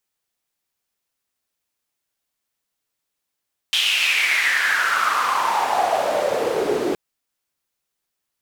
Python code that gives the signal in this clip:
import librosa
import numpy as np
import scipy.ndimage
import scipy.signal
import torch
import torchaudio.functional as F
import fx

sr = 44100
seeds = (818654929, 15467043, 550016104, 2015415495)

y = fx.riser_noise(sr, seeds[0], length_s=3.22, colour='white', kind='bandpass', start_hz=3200.0, end_hz=350.0, q=6.1, swell_db=7, law='exponential')